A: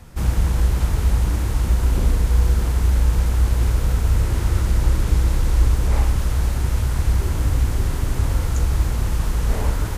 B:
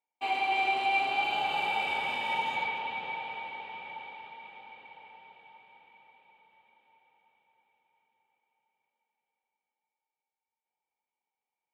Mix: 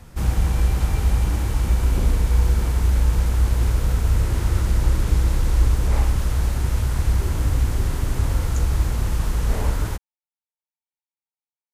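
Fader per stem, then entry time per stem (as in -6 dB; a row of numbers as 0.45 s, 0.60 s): -1.0 dB, -16.5 dB; 0.00 s, 0.00 s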